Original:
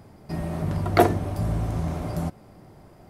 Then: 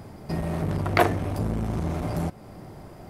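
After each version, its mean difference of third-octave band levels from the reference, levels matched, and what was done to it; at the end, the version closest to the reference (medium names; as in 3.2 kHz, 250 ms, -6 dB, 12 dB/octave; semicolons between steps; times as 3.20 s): 4.0 dB: dynamic bell 2.2 kHz, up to +5 dB, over -44 dBFS, Q 1.1; in parallel at +1 dB: compression, threshold -36 dBFS, peak gain reduction 23 dB; on the sum: transformer saturation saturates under 1 kHz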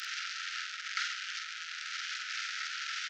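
28.0 dB: one-bit delta coder 32 kbps, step -16 dBFS; Chebyshev high-pass 1.3 kHz, order 10; doubling 47 ms -5 dB; trim -8 dB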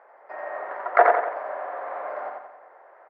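15.5 dB: elliptic band-pass 510–1800 Hz, stop band 70 dB; tilt EQ +3 dB/octave; on a send: feedback delay 89 ms, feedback 46%, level -3 dB; on the sum: trim +5 dB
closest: first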